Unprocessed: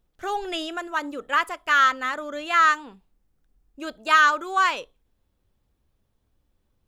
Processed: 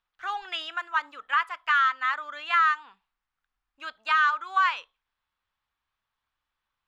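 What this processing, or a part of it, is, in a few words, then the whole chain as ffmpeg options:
DJ mixer with the lows and highs turned down: -filter_complex "[0:a]acrossover=split=570 4600:gain=0.251 1 0.126[s0][s1][s2];[s0][s1][s2]amix=inputs=3:normalize=0,lowshelf=f=770:t=q:w=1.5:g=-11,alimiter=limit=0.211:level=0:latency=1:release=246"

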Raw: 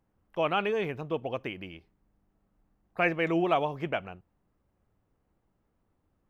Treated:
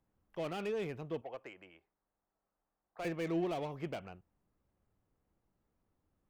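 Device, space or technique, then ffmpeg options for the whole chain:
one-band saturation: -filter_complex "[0:a]asettb=1/sr,asplit=3[s0][s1][s2];[s0]atrim=end=1.214[s3];[s1]atrim=start=1.21:end=3.05,asetpts=PTS-STARTPTS,afade=t=in:d=0.004:c=qsin,afade=t=out:st=1.836:d=0.004:c=qsin,acrossover=split=460 2100:gain=0.141 1 0.178[s4][s5][s6];[s4][s5][s6]amix=inputs=3:normalize=0[s7];[s2]atrim=start=3.046[s8];[s3][s7]acrossfade=d=0.004:c1=hsin:c2=qsin[s9];[s9][s8]acrossfade=d=0.004:c1=qsin:c2=hsin,acrossover=split=530|3800[s10][s11][s12];[s11]asoftclip=type=tanh:threshold=0.0126[s13];[s10][s13][s12]amix=inputs=3:normalize=0,volume=0.501"

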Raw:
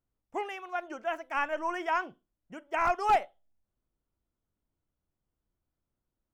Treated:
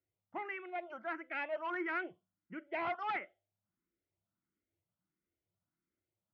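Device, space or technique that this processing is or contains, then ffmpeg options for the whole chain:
barber-pole phaser into a guitar amplifier: -filter_complex "[0:a]asplit=2[s0][s1];[s1]afreqshift=1.5[s2];[s0][s2]amix=inputs=2:normalize=1,asoftclip=type=tanh:threshold=0.0282,highpass=100,equalizer=f=100:t=q:w=4:g=9,equalizer=f=180:t=q:w=4:g=9,equalizer=f=340:t=q:w=4:g=9,equalizer=f=630:t=q:w=4:g=4,equalizer=f=1400:t=q:w=4:g=6,equalizer=f=2100:t=q:w=4:g=10,lowpass=f=3600:w=0.5412,lowpass=f=3600:w=1.3066,volume=0.562"

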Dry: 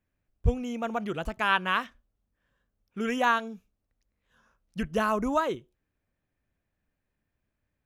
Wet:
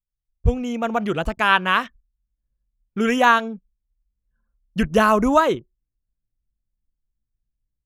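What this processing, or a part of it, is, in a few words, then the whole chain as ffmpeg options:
voice memo with heavy noise removal: -af "anlmdn=0.00631,dynaudnorm=f=290:g=3:m=3.55"

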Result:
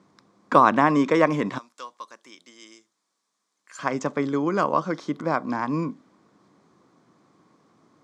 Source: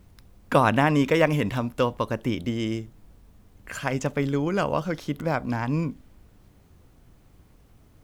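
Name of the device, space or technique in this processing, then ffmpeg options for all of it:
television speaker: -filter_complex "[0:a]asettb=1/sr,asplit=3[s0][s1][s2];[s0]atrim=end=1.584[s3];[s1]atrim=start=1.58:end=3.79,asetpts=PTS-STARTPTS,afade=t=in:d=0.004:c=qsin,afade=t=out:st=2.206:d=0.004:c=qsin,aderivative[s4];[s2]atrim=start=3.786[s5];[s3][s4]acrossfade=d=0.004:c1=hsin:c2=qsin[s6];[s6][s5]acrossfade=d=0.004:c1=qsin:c2=hsin,highpass=f=170:w=0.5412,highpass=f=170:w=1.3066,equalizer=f=330:t=q:w=4:g=4,equalizer=f=1100:t=q:w=4:g=10,equalizer=f=2800:t=q:w=4:g=-9,lowpass=f=7300:w=0.5412,lowpass=f=7300:w=1.3066"

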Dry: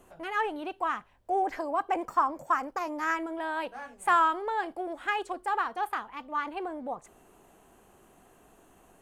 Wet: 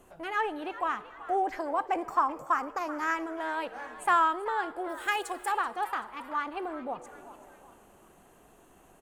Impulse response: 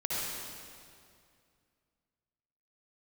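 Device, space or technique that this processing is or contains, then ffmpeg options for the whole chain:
compressed reverb return: -filter_complex "[0:a]asettb=1/sr,asplit=3[s0][s1][s2];[s0]atrim=end=4.894[s3];[s1]atrim=start=4.89:end=5.52,asetpts=PTS-STARTPTS,afade=t=in:d=0.004:c=qsin,afade=t=out:st=0.626:d=0.004:c=qsin,aemphasis=mode=production:type=75fm[s4];[s2]atrim=start=5.516[s5];[s3][s4]acrossfade=d=0.004:c1=hsin:c2=qsin[s6];[s6][s5]acrossfade=d=0.004:c1=qsin:c2=hsin,asplit=4[s7][s8][s9][s10];[s8]adelay=383,afreqshift=130,volume=0.158[s11];[s9]adelay=766,afreqshift=260,volume=0.0617[s12];[s10]adelay=1149,afreqshift=390,volume=0.024[s13];[s7][s11][s12][s13]amix=inputs=4:normalize=0,asplit=2[s14][s15];[1:a]atrim=start_sample=2205[s16];[s15][s16]afir=irnorm=-1:irlink=0,acompressor=threshold=0.0316:ratio=6,volume=0.158[s17];[s14][s17]amix=inputs=2:normalize=0,volume=0.891"

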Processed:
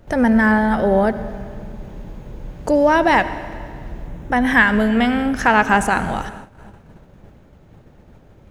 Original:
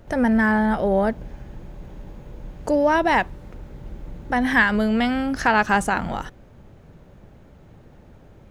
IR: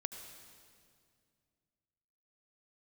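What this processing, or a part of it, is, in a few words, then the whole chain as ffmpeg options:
keyed gated reverb: -filter_complex "[0:a]asettb=1/sr,asplit=3[s0][s1][s2];[s0]atrim=end=4.074[s3];[s1]atrim=start=4.07:end=5.82,asetpts=PTS-STARTPTS,afade=t=in:d=0.004:c=qsin,afade=t=out:st=1.746:d=0.004:c=qsin,equalizer=f=4500:t=o:w=0.3:g=-10[s4];[s2]atrim=start=5.816[s5];[s3][s4]acrossfade=d=0.004:c1=hsin:c2=qsin[s6];[s6][s5]acrossfade=d=0.004:c1=qsin:c2=hsin,asplit=3[s7][s8][s9];[1:a]atrim=start_sample=2205[s10];[s8][s10]afir=irnorm=-1:irlink=0[s11];[s9]apad=whole_len=374919[s12];[s11][s12]sidechaingate=range=0.0224:threshold=0.00562:ratio=16:detection=peak,volume=1.12[s13];[s7][s13]amix=inputs=2:normalize=0,volume=0.841"

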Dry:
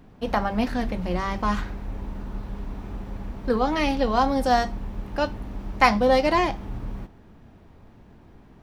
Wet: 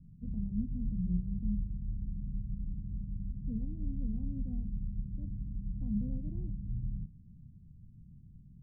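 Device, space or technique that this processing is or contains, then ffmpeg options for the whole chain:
the neighbour's flat through the wall: -af "lowpass=f=180:w=0.5412,lowpass=f=180:w=1.3066,equalizer=f=150:t=o:w=0.8:g=7.5,volume=0.596"

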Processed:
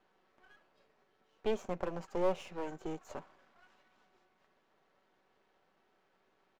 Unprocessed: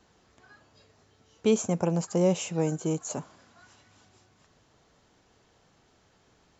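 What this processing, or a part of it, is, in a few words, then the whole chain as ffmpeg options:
crystal radio: -af "highpass=310,lowpass=2600,aecho=1:1:5.3:0.36,aeval=exprs='if(lt(val(0),0),0.251*val(0),val(0))':c=same,volume=0.631"

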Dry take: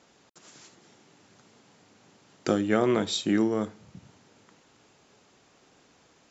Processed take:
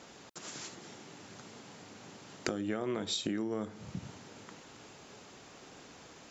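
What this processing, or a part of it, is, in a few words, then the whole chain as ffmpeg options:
serial compression, leveller first: -af "acompressor=threshold=0.0398:ratio=2.5,acompressor=threshold=0.01:ratio=5,volume=2.37"

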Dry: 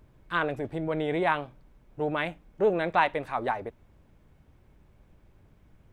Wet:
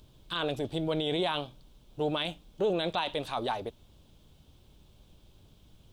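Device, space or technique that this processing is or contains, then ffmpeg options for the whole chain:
over-bright horn tweeter: -af "highshelf=f=2600:t=q:w=3:g=9,alimiter=limit=0.0944:level=0:latency=1:release=18"

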